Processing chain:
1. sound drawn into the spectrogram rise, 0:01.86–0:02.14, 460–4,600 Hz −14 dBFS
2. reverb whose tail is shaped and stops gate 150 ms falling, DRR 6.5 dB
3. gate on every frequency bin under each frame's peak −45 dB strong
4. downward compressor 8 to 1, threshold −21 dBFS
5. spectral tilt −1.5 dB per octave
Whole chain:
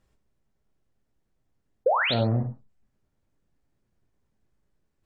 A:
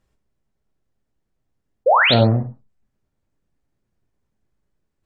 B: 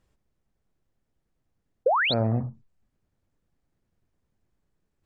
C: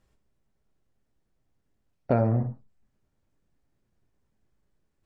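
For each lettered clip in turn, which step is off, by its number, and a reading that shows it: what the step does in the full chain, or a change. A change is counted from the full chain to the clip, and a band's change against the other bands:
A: 4, average gain reduction 7.0 dB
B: 2, change in momentary loudness spread +1 LU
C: 1, 2 kHz band −18.0 dB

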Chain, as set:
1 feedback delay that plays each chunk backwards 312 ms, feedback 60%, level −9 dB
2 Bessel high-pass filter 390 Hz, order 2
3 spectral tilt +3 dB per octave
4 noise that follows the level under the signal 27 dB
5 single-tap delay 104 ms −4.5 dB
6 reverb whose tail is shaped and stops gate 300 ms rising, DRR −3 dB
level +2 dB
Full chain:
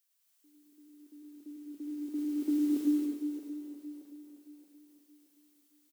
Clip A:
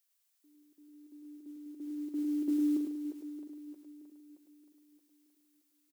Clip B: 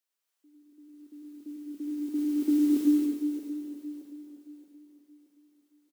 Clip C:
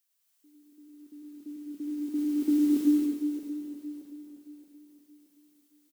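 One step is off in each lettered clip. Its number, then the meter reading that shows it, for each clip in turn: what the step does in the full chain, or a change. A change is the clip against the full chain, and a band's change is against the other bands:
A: 6, echo-to-direct ratio 5.0 dB to −4.5 dB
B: 3, change in integrated loudness +5.5 LU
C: 2, change in integrated loudness +5.0 LU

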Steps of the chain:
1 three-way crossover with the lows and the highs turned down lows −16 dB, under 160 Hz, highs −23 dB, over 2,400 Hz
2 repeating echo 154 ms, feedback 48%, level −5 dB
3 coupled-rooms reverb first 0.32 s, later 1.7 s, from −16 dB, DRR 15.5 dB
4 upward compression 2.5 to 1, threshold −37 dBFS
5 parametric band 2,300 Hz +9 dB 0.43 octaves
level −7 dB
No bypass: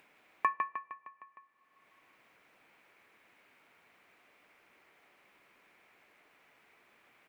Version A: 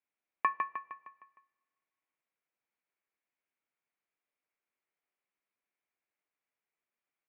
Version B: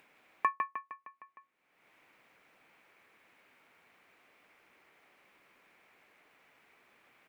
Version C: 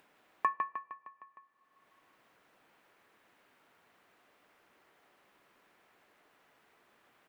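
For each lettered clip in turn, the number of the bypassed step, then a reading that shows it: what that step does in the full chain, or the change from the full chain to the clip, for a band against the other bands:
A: 4, change in momentary loudness spread −4 LU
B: 3, change in momentary loudness spread −3 LU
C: 5, 2 kHz band −2.5 dB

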